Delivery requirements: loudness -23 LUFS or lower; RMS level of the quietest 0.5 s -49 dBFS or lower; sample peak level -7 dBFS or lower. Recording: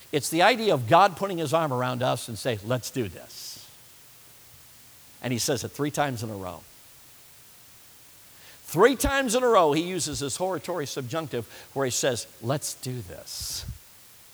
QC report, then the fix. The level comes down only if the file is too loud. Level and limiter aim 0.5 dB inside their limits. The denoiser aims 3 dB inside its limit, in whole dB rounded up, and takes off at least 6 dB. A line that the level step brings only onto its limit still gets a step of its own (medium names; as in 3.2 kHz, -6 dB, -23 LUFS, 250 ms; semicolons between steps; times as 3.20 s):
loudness -25.5 LUFS: pass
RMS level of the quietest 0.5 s -51 dBFS: pass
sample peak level -5.5 dBFS: fail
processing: peak limiter -7.5 dBFS